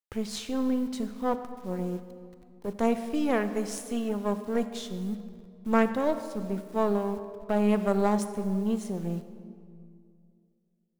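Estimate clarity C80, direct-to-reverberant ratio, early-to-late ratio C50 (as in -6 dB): 12.0 dB, 10.0 dB, 11.0 dB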